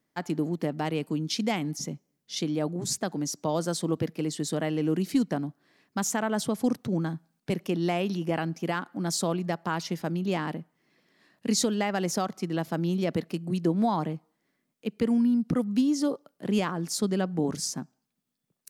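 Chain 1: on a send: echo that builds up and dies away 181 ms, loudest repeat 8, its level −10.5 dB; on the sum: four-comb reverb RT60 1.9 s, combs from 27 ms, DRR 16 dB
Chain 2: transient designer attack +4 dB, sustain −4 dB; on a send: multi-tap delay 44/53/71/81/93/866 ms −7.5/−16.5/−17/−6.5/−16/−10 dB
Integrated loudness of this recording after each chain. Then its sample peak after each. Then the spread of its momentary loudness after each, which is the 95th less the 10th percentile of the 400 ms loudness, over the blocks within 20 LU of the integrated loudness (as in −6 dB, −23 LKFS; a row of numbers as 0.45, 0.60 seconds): −26.0, −26.5 LKFS; −10.5, −10.0 dBFS; 6, 10 LU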